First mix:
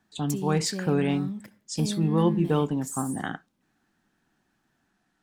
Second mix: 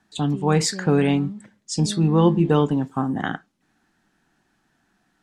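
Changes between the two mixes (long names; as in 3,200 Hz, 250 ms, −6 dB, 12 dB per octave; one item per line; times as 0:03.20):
speech +6.0 dB
background: add high-frequency loss of the air 380 metres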